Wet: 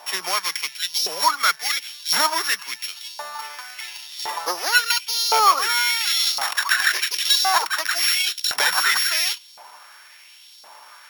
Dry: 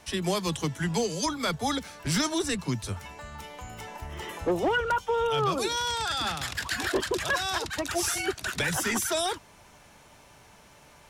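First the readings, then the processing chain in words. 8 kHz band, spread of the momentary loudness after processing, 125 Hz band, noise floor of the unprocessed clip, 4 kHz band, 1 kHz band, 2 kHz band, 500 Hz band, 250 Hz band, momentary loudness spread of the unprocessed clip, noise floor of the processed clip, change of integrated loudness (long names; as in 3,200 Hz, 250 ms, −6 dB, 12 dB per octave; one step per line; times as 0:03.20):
+8.0 dB, 15 LU, below −25 dB, −55 dBFS, +12.0 dB, +8.5 dB, +9.5 dB, −5.5 dB, −15.5 dB, 13 LU, −47 dBFS, +9.0 dB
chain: samples sorted by size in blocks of 8 samples
auto-filter high-pass saw up 0.94 Hz 750–4,400 Hz
level +8.5 dB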